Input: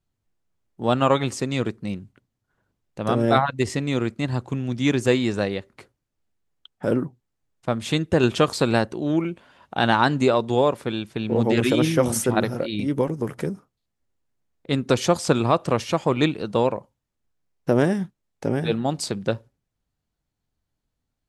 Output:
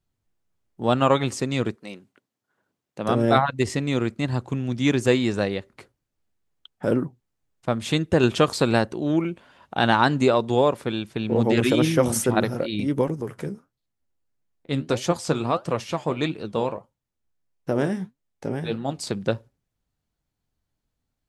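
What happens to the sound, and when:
1.74–3.08 s: high-pass 470 Hz -> 140 Hz
13.21–19.07 s: flange 1.6 Hz, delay 5.4 ms, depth 9.7 ms, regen +61%

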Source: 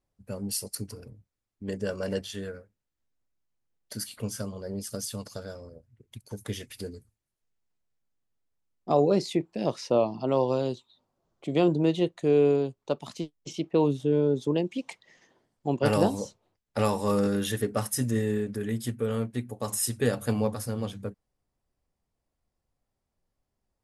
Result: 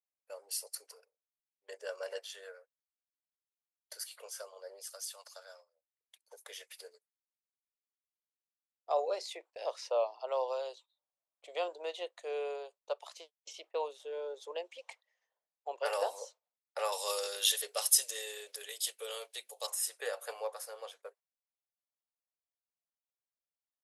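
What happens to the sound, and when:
4.89–6.25 s: peaking EQ 420 Hz -13.5 dB
14.76–15.79 s: treble shelf 3.3 kHz -4 dB
16.92–19.67 s: resonant high shelf 2.4 kHz +11.5 dB, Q 1.5
whole clip: steep high-pass 500 Hz 48 dB/octave; gate -52 dBFS, range -15 dB; trim -6 dB

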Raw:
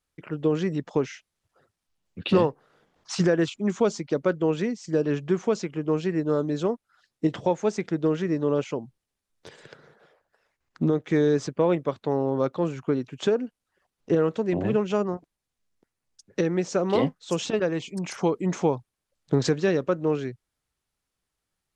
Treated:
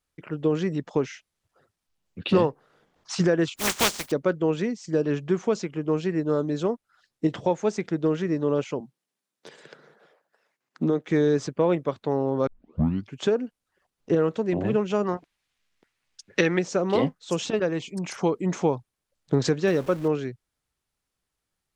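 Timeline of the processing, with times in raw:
3.56–4.10 s: spectral contrast reduction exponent 0.23
8.80–11.09 s: high-pass 160 Hz 24 dB/octave
12.47 s: tape start 0.68 s
15.03–16.59 s: peaking EQ 2.5 kHz +13.5 dB 2.5 oct
19.67–20.08 s: jump at every zero crossing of -37.5 dBFS

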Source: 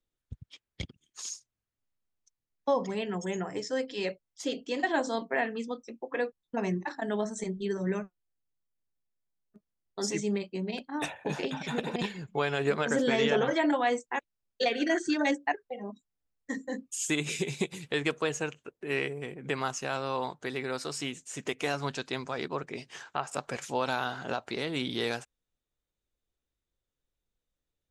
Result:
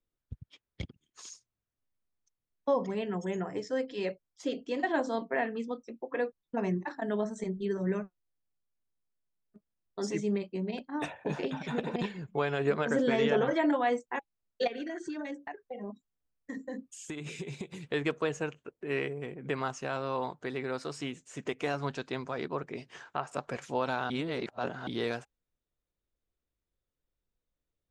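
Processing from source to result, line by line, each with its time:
14.67–17.76 s: compression 10:1, threshold -33 dBFS
24.10–24.87 s: reverse
whole clip: low-pass 10 kHz; treble shelf 2.7 kHz -10 dB; band-stop 820 Hz, Q 21

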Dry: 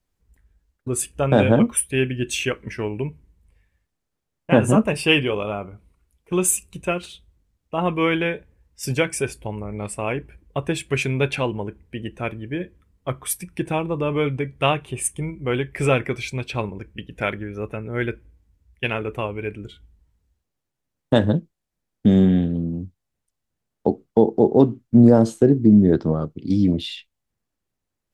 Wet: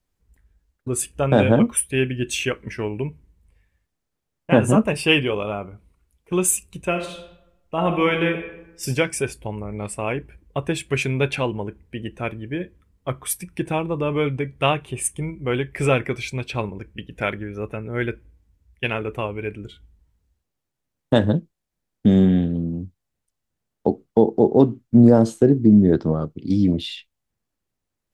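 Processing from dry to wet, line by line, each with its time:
6.88–8.87 s: reverb throw, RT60 0.88 s, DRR 4.5 dB

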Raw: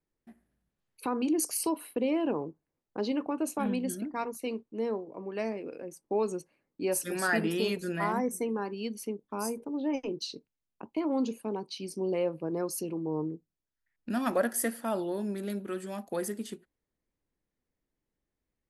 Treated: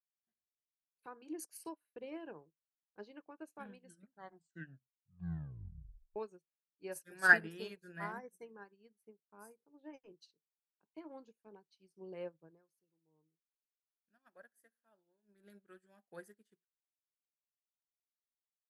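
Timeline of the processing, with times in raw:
3.80 s: tape stop 2.36 s
8.76–9.51 s: high-order bell 4.1 kHz -8.5 dB
12.38–15.47 s: dip -10 dB, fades 0.25 s
whole clip: graphic EQ with 31 bands 160 Hz +5 dB, 250 Hz -10 dB, 1.6 kHz +11 dB; upward expansion 2.5:1, over -45 dBFS

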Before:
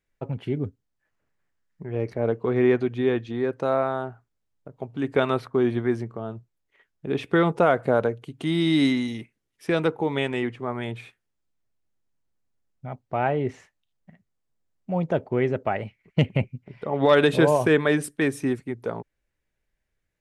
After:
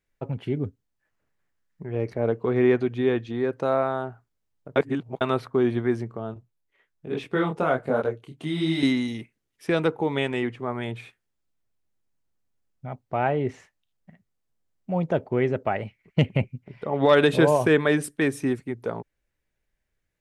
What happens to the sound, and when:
4.76–5.21 s: reverse
6.34–8.83 s: detune thickener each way 44 cents

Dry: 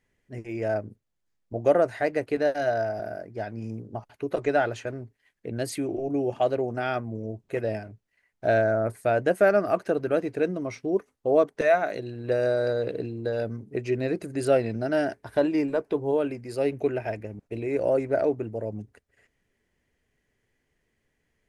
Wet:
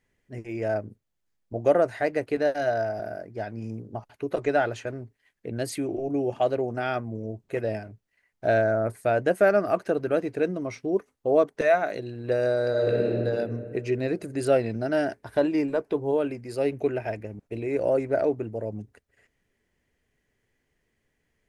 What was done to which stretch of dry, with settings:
12.69–13.14 s: reverb throw, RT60 2.3 s, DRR -3.5 dB

